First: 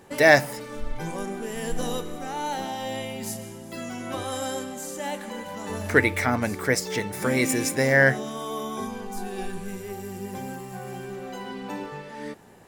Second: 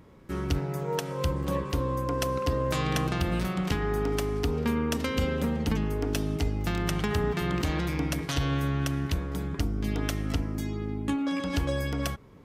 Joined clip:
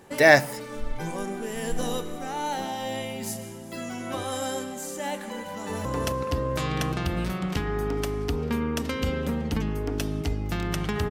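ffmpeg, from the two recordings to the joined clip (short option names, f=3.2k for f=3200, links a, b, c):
-filter_complex "[0:a]apad=whole_dur=11.1,atrim=end=11.1,atrim=end=5.852[a];[1:a]atrim=start=1.998:end=7.25[b];[a][b]acrossfade=d=0.004:c1=hsin:c2=hsin,asplit=2[c][d];[d]afade=t=in:st=5.48:d=0.01,afade=t=out:st=5.85:d=0.01,aecho=0:1:270|540|810|1080:0.707946|0.212384|0.0637151|0.0191145[e];[c][e]amix=inputs=2:normalize=0"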